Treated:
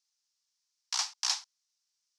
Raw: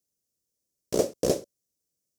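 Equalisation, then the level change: steep high-pass 820 Hz 96 dB/octave; resonant low-pass 4.9 kHz, resonance Q 2; +4.0 dB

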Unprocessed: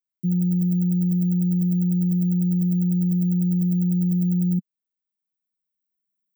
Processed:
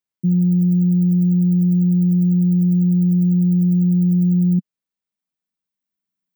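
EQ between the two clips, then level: treble shelf 9.8 kHz -9 dB; +5.5 dB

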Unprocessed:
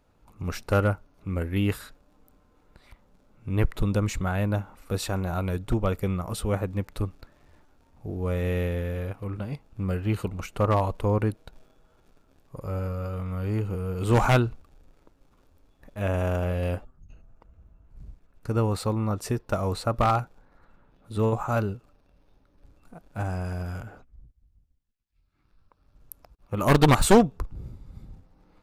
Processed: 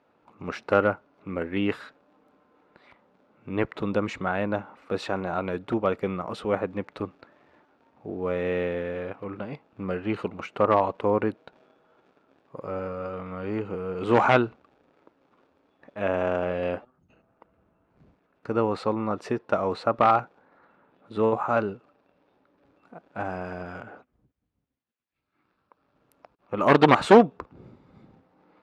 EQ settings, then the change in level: band-pass 260–2800 Hz; +4.0 dB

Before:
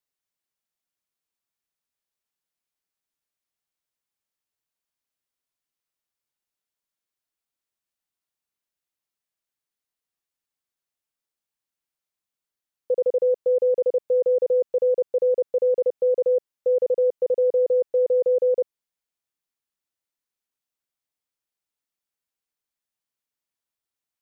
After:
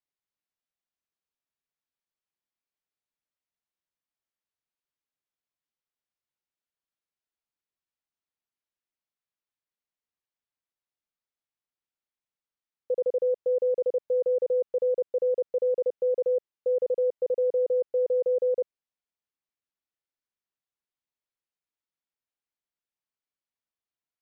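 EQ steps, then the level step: distance through air 110 m; -4.5 dB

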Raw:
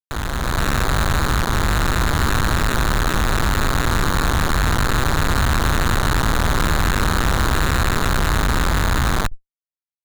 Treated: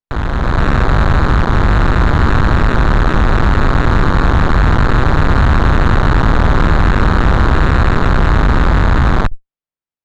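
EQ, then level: tape spacing loss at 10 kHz 29 dB; +8.5 dB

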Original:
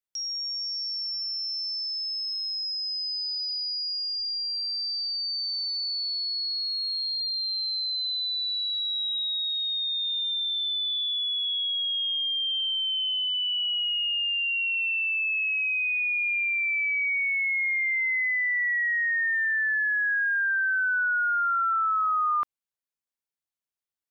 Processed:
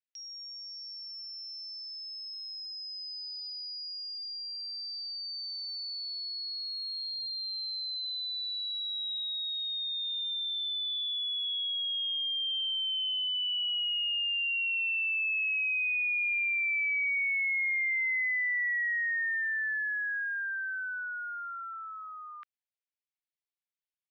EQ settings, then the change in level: inverse Chebyshev high-pass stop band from 930 Hz, stop band 40 dB; distance through air 220 m; 0.0 dB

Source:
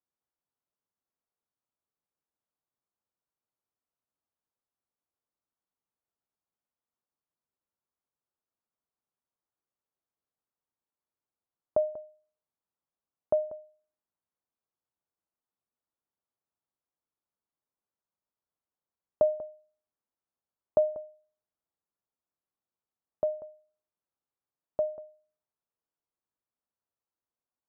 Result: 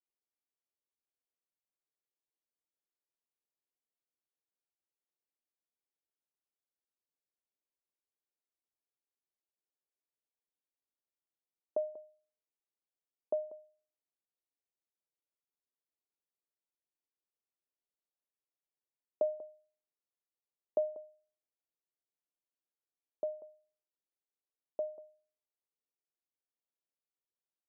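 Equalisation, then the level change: ladder band-pass 460 Hz, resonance 25%; +4.0 dB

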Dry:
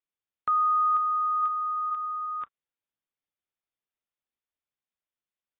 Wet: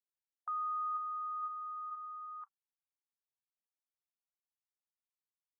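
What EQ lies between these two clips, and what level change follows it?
brick-wall FIR high-pass 720 Hz; low-pass 1 kHz 24 dB/octave; differentiator; +10.0 dB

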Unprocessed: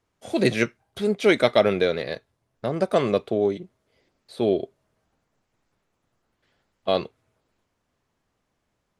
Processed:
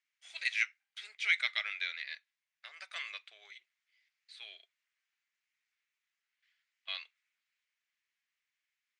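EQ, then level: ladder high-pass 1.8 kHz, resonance 50%; low-pass 8 kHz 24 dB/octave; 0.0 dB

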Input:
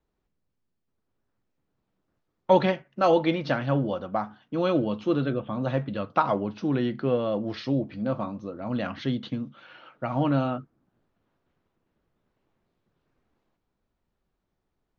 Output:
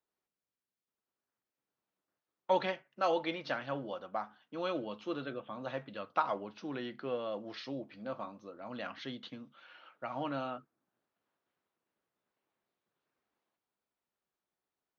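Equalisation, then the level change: high-pass 750 Hz 6 dB/octave; -6.0 dB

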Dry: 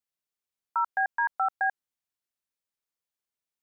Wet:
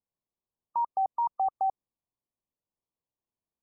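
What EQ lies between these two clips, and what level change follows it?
brick-wall FIR low-pass 1.2 kHz; bass shelf 490 Hz +8 dB; 0.0 dB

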